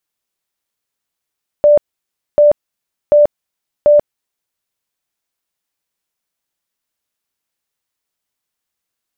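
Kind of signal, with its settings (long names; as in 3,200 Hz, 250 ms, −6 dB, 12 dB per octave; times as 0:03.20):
tone bursts 590 Hz, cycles 80, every 0.74 s, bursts 4, −4.5 dBFS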